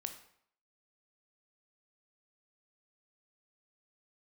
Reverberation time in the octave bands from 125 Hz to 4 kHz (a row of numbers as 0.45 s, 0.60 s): 0.60 s, 0.60 s, 0.65 s, 0.65 s, 0.60 s, 0.50 s